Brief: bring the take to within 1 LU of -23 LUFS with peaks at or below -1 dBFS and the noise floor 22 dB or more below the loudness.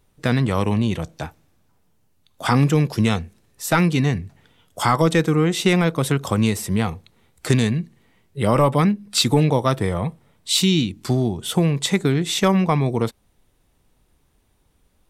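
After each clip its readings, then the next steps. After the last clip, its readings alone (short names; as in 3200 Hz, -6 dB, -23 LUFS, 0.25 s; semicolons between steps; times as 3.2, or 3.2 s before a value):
loudness -20.0 LUFS; peak -5.0 dBFS; loudness target -23.0 LUFS
-> gain -3 dB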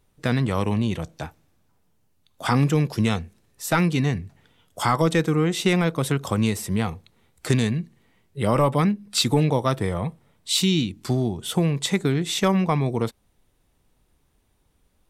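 loudness -23.0 LUFS; peak -8.0 dBFS; noise floor -66 dBFS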